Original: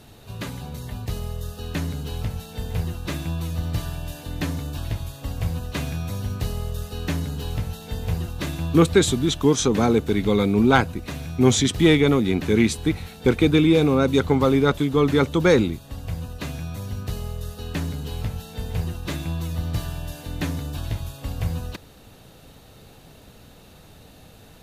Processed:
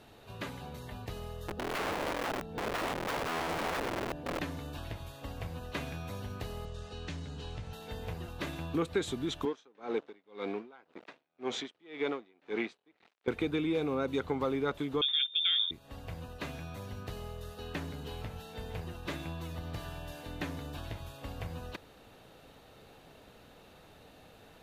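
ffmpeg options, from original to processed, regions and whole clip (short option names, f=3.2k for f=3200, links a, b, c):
-filter_complex "[0:a]asettb=1/sr,asplit=3[a][b][c];[a]atrim=end=1.484[d];[b]atrim=start=1.48:end=4.39,asetpts=PTS-STARTPTS,afade=t=in:d=0.004:c=qsin,afade=t=out:st=2.906:d=0.004:c=qsin,acrossover=split=4100[e][f];[f]acompressor=threshold=-51dB:ratio=4:attack=1:release=60[g];[e][g]amix=inputs=2:normalize=0,tiltshelf=f=720:g=9.5,aeval=exprs='(mod(13.3*val(0)+1,2)-1)/13.3':c=same[h];[c]atrim=start=4.386[i];[d][h]acrossfade=d=0.004:c1=hsin:c2=qsin[j];[j][i]acrossfade=d=0.004:c1=qsin:c2=hsin,asettb=1/sr,asplit=3[k][l][m];[k]atrim=end=6.654[n];[l]atrim=start=6.65:end=7.73,asetpts=PTS-STARTPTS,afade=t=in:d=0.004:c=qsin,afade=t=out:st=1.076:d=0.004:c=qsin,lowpass=f=8k:w=0.5412,lowpass=f=8k:w=1.3066,acrossover=split=170|3000[o][p][q];[p]acompressor=threshold=-39dB:ratio=3:attack=3.2:release=140:knee=2.83:detection=peak[r];[o][r][q]amix=inputs=3:normalize=0[s];[m]atrim=start=7.726[t];[n][s]acrossfade=d=0.004:c1=hsin:c2=qsin[u];[u][t]acrossfade=d=0.004:c1=qsin:c2=hsin,asettb=1/sr,asplit=3[v][w][x];[v]atrim=end=9.454[y];[w]atrim=start=9.45:end=13.28,asetpts=PTS-STARTPTS,afade=t=in:d=0.004:c=qsin,afade=t=out:st=3.826:d=0.004:c=qsin,aeval=exprs='sgn(val(0))*max(abs(val(0))-0.0188,0)':c=same,highpass=310,lowpass=4.6k,aeval=exprs='val(0)*pow(10,-34*(0.5-0.5*cos(2*PI*1.9*n/s))/20)':c=same[z];[x]atrim=start=13.276[aa];[y][z]acrossfade=d=0.004:c1=hsin:c2=qsin[ab];[ab][aa]acrossfade=d=0.004:c1=qsin:c2=hsin,asettb=1/sr,asplit=3[ac][ad][ae];[ac]atrim=end=15.014[af];[ad]atrim=start=15.01:end=15.71,asetpts=PTS-STARTPTS,afade=t=in:d=0.004:c=qsin,afade=t=out:st=0.696:d=0.004:c=qsin,aemphasis=mode=reproduction:type=riaa,agate=range=-33dB:threshold=-13dB:ratio=3:release=100:detection=peak,lowpass=f=3.1k:t=q:w=0.5098,lowpass=f=3.1k:t=q:w=0.6013,lowpass=f=3.1k:t=q:w=0.9,lowpass=f=3.1k:t=q:w=2.563,afreqshift=-3700[ag];[ae]atrim=start=15.706[ah];[af][ag]acrossfade=d=0.004:c1=hsin:c2=qsin[ai];[ai][ah]acrossfade=d=0.004:c1=qsin:c2=hsin,acompressor=threshold=-25dB:ratio=2.5,bass=f=250:g=-9,treble=f=4k:g=-9,volume=-4dB"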